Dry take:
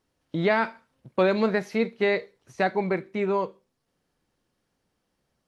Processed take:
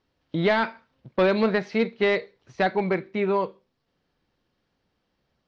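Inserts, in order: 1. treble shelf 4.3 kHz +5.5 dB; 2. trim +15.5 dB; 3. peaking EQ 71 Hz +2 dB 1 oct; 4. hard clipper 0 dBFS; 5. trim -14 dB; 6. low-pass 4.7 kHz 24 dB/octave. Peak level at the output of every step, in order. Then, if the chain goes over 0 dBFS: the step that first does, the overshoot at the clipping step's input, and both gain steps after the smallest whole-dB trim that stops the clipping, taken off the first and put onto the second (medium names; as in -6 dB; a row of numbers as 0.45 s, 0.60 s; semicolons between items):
-9.5 dBFS, +6.0 dBFS, +6.0 dBFS, 0.0 dBFS, -14.0 dBFS, -13.0 dBFS; step 2, 6.0 dB; step 2 +9.5 dB, step 5 -8 dB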